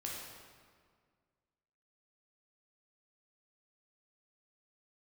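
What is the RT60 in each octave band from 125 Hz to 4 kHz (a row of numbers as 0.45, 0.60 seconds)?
2.1, 2.1, 1.9, 1.8, 1.6, 1.3 seconds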